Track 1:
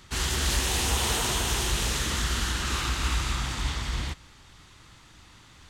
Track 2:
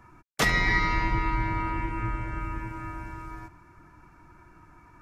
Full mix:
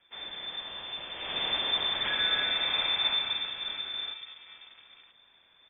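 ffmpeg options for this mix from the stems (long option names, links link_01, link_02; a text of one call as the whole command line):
ffmpeg -i stem1.wav -i stem2.wav -filter_complex "[0:a]volume=-1dB,afade=type=in:start_time=1.13:duration=0.32:silence=0.298538,afade=type=out:start_time=2.98:duration=0.54:silence=0.473151[link_01];[1:a]acrusher=bits=3:mode=log:mix=0:aa=0.000001,aeval=exprs='sgn(val(0))*max(abs(val(0))-0.0112,0)':channel_layout=same,adelay=1650,volume=-7.5dB[link_02];[link_01][link_02]amix=inputs=2:normalize=0,equalizer=frequency=670:width=0.79:gain=-7,lowpass=frequency=3100:width_type=q:width=0.5098,lowpass=frequency=3100:width_type=q:width=0.6013,lowpass=frequency=3100:width_type=q:width=0.9,lowpass=frequency=3100:width_type=q:width=2.563,afreqshift=-3600" out.wav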